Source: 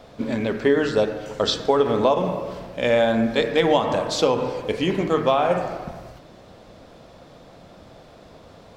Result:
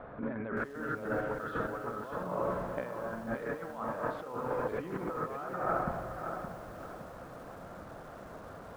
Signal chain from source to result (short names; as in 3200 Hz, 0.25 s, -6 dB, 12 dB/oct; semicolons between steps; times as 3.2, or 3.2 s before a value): dynamic EQ 1300 Hz, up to +7 dB, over -44 dBFS, Q 5.7; negative-ratio compressor -30 dBFS, ratio -1; ladder low-pass 1700 Hz, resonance 50%; lo-fi delay 0.568 s, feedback 35%, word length 9-bit, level -7 dB